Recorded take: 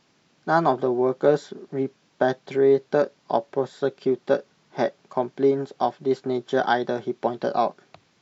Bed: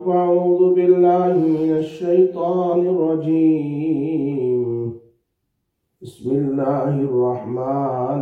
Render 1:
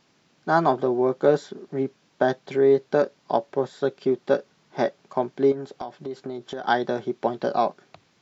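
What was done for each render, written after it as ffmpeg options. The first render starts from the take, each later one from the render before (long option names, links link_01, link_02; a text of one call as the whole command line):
ffmpeg -i in.wav -filter_complex "[0:a]asettb=1/sr,asplit=3[link_01][link_02][link_03];[link_01]atrim=end=5.524[link_04];[link_02]atrim=start=5.52:end=6.68,asetpts=PTS-STARTPTS,afade=type=in:duration=0.004:curve=qsin,afade=type=out:start_time=1.156:duration=0.004:curve=qsin,acompressor=threshold=-28dB:ratio=10:attack=3.2:release=140:knee=1:detection=peak[link_05];[link_03]atrim=start=6.676[link_06];[link_04][link_05]acrossfade=duration=0.004:curve1=hsin:curve2=qsin[link_07];[link_07][link_06]acrossfade=duration=0.004:curve1=qsin:curve2=hsin" out.wav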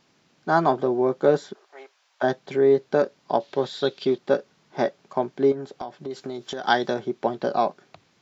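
ffmpeg -i in.wav -filter_complex "[0:a]asplit=3[link_01][link_02][link_03];[link_01]afade=type=out:start_time=1.53:duration=0.02[link_04];[link_02]highpass=frequency=700:width=0.5412,highpass=frequency=700:width=1.3066,afade=type=in:start_time=1.53:duration=0.02,afade=type=out:start_time=2.22:duration=0.02[link_05];[link_03]afade=type=in:start_time=2.22:duration=0.02[link_06];[link_04][link_05][link_06]amix=inputs=3:normalize=0,asettb=1/sr,asplit=3[link_07][link_08][link_09];[link_07]atrim=end=3.404[link_10];[link_08]atrim=start=3.4:end=4.18,asetpts=PTS-STARTPTS,afade=type=in:duration=0.004:curve=qsin,afade=type=out:start_time=0.776:duration=0.004:curve=qsin,equalizer=frequency=3800:width=1.2:gain=14[link_11];[link_09]atrim=start=4.176[link_12];[link_10][link_11]acrossfade=duration=0.004:curve1=hsin:curve2=qsin[link_13];[link_13][link_12]acrossfade=duration=0.004:curve1=qsin:curve2=hsin,asettb=1/sr,asplit=3[link_14][link_15][link_16];[link_14]atrim=end=6.104[link_17];[link_15]atrim=start=6.1:end=6.94,asetpts=PTS-STARTPTS,afade=type=in:duration=0.004:curve=qsin,afade=type=out:start_time=0.836:duration=0.004:curve=qsin,highshelf=frequency=2500:gain=9[link_18];[link_16]atrim=start=6.936[link_19];[link_17][link_18]acrossfade=duration=0.004:curve1=hsin:curve2=qsin[link_20];[link_20][link_19]acrossfade=duration=0.004:curve1=qsin:curve2=hsin" out.wav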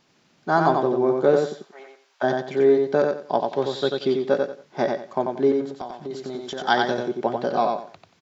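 ffmpeg -i in.wav -af "aecho=1:1:91|182|273:0.631|0.158|0.0394" out.wav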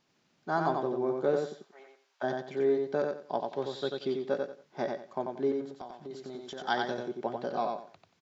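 ffmpeg -i in.wav -af "volume=-10dB" out.wav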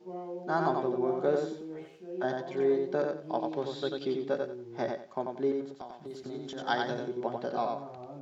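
ffmpeg -i in.wav -i bed.wav -filter_complex "[1:a]volume=-23.5dB[link_01];[0:a][link_01]amix=inputs=2:normalize=0" out.wav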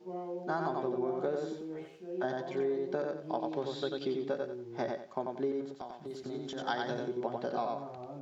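ffmpeg -i in.wav -af "acompressor=threshold=-29dB:ratio=6" out.wav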